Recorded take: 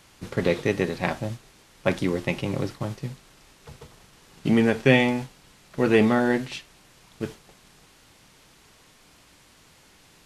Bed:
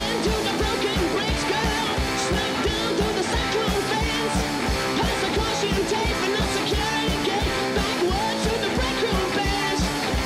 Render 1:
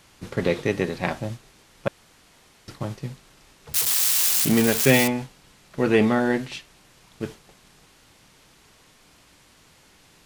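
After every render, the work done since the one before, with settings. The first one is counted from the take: 1.88–2.68 room tone; 3.74–5.08 switching spikes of -12.5 dBFS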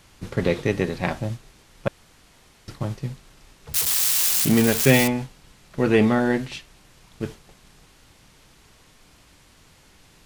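low shelf 100 Hz +9 dB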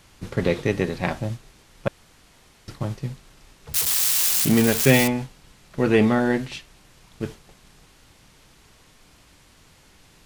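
nothing audible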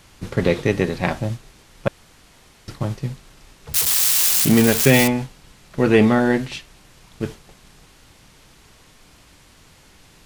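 gain +3.5 dB; limiter -1 dBFS, peak gain reduction 2.5 dB

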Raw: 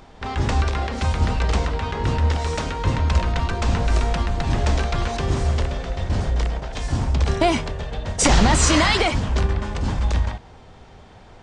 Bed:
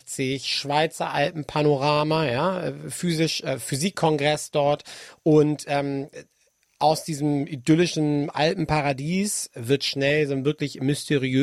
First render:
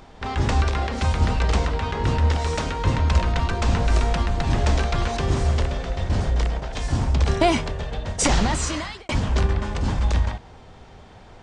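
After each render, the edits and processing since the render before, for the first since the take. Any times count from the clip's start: 7.91–9.09 fade out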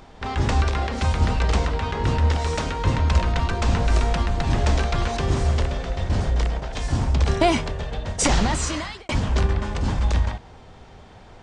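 nothing audible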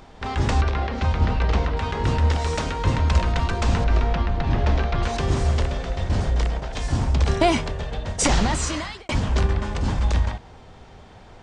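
0.61–1.77 air absorption 140 m; 3.84–5.03 air absorption 180 m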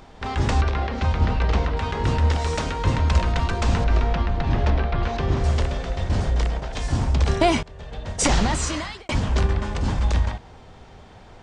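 4.7–5.44 air absorption 150 m; 7.63–8.24 fade in linear, from -22.5 dB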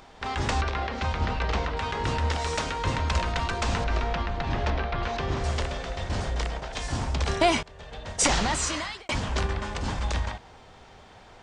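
low shelf 430 Hz -8.5 dB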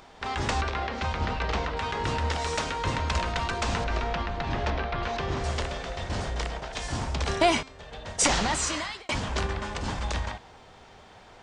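low shelf 110 Hz -4 dB; de-hum 264.8 Hz, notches 31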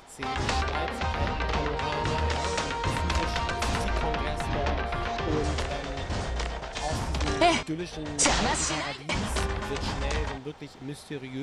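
add bed -14.5 dB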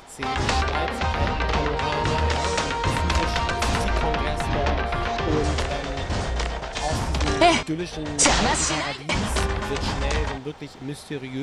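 gain +5 dB

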